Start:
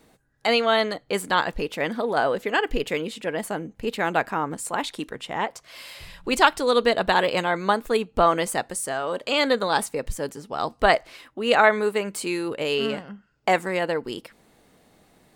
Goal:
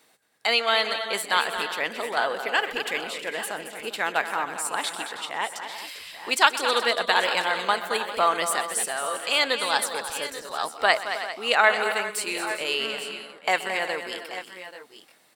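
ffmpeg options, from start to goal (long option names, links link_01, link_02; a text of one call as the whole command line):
ffmpeg -i in.wav -filter_complex "[0:a]highpass=frequency=1500:poles=1,bandreject=frequency=6600:width=18,asplit=2[link_01][link_02];[link_02]aecho=0:1:127|222|318|399|834|856:0.133|0.316|0.2|0.188|0.168|0.168[link_03];[link_01][link_03]amix=inputs=2:normalize=0,volume=3dB" out.wav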